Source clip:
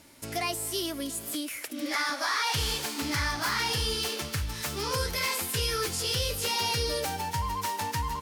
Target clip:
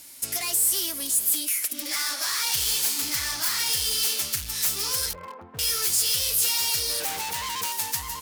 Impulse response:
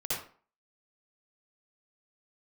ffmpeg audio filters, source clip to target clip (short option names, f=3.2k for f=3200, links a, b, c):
-filter_complex "[0:a]asettb=1/sr,asplit=3[a][b][c];[a]atrim=end=5.134[d];[b]atrim=start=5.13:end=5.59,asetpts=PTS-STARTPTS,afade=t=in:d=0.004:c=qsin,afade=t=out:st=0.456:d=0.004:c=qsin,lowpass=f=1.1k:w=0.5412,lowpass=f=1.1k:w=1.3066[e];[c]atrim=start=5.586[f];[d][e]acrossfade=d=0.004:c1=hsin:c2=qsin[g];[g][f]acrossfade=d=0.004:c1=qsin:c2=hsin,asettb=1/sr,asplit=3[h][i][j];[h]atrim=end=7.004[k];[i]atrim=start=7:end=7.72,asetpts=PTS-STARTPTS,afade=t=in:d=0.004:c=qsin,afade=t=out:st=0.716:d=0.004:c=qsin,equalizer=f=450:w=0.3:g=14[l];[j]atrim=start=7.716[m];[k][l]acrossfade=d=0.004:c1=hsin:c2=qsin[n];[n][m]acrossfade=d=0.004:c1=qsin:c2=hsin,asoftclip=type=hard:threshold=-30.5dB,crystalizer=i=8.5:c=0,volume=-6.5dB"